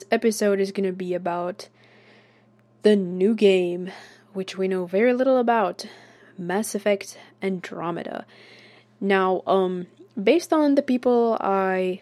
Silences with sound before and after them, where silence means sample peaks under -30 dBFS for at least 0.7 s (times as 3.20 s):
1.62–2.85 s
8.20–9.02 s